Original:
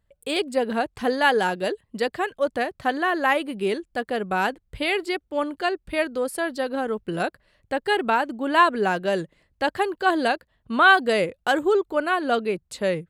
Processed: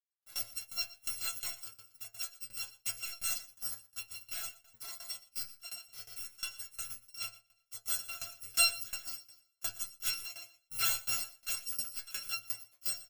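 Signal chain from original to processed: bit-reversed sample order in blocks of 256 samples; in parallel at +1 dB: peak limiter -15 dBFS, peak gain reduction 10 dB; on the sum: power-law waveshaper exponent 2; inharmonic resonator 110 Hz, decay 0.3 s, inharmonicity 0.002; feedback delay 120 ms, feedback 24%, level -14 dB; on a send at -15 dB: reverberation, pre-delay 3 ms; on the sum: tremolo saw down 2.8 Hz, depth 90%

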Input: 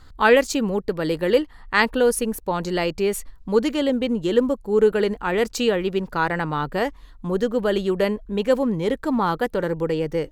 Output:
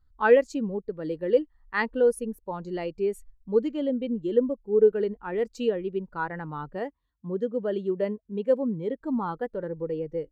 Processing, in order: 6.75–9.01 s: high-pass 60 Hz 24 dB/octave; spectral contrast expander 1.5:1; trim -4.5 dB

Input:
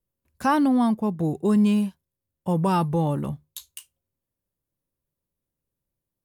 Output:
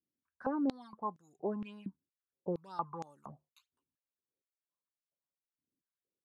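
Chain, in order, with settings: resonant high shelf 2 kHz -12.5 dB, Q 1.5; phase shifter stages 12, 3 Hz, lowest notch 550–2600 Hz; step-sequenced band-pass 4.3 Hz 280–6600 Hz; trim +2 dB

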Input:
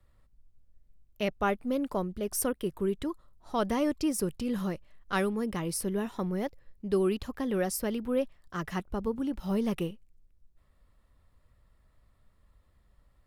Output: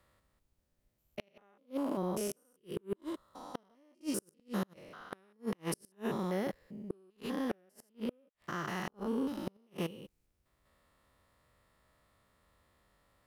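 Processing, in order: spectrogram pixelated in time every 200 ms; high-pass 350 Hz 6 dB/octave; inverted gate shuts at -29 dBFS, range -38 dB; trim +6 dB

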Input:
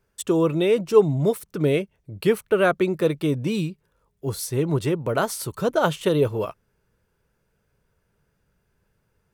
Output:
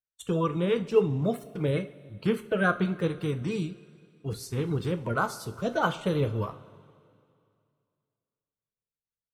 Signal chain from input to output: coarse spectral quantiser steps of 30 dB; expander -31 dBFS; low-pass 2.1 kHz 6 dB/octave; peaking EQ 360 Hz -9 dB 2.1 oct; two-slope reverb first 0.3 s, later 2.4 s, from -18 dB, DRR 8 dB

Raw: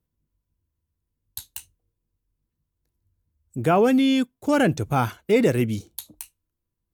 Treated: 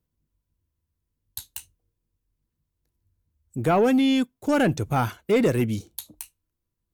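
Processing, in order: saturation -12 dBFS, distortion -20 dB

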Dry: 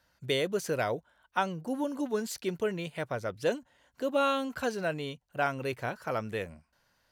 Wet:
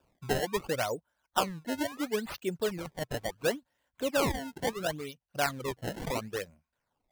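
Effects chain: decimation with a swept rate 21×, swing 160% 0.72 Hz; reverb removal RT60 1.1 s; 5.89–6.30 s: swell ahead of each attack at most 65 dB/s

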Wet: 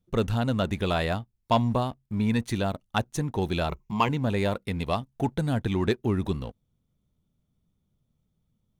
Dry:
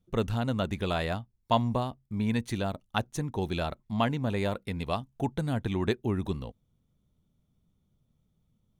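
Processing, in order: 3.69–4.09 s: rippled EQ curve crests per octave 0.76, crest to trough 14 dB; waveshaping leveller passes 1

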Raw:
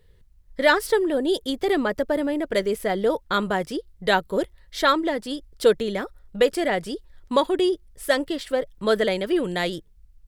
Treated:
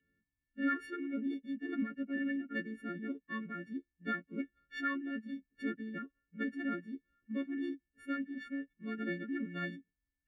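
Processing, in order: partials quantised in pitch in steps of 4 st; vowel filter i; formant shift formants -3 st; trim -2.5 dB

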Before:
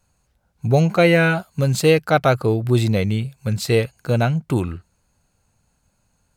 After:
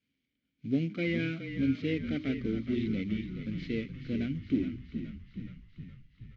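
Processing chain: CVSD coder 32 kbps; in parallel at -4 dB: one-sided clip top -23 dBFS; on the sum: vowel filter i; bass shelf 440 Hz +3.5 dB; de-hum 61.99 Hz, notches 6; frequency-shifting echo 420 ms, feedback 64%, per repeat -37 Hz, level -9 dB; trim -4.5 dB

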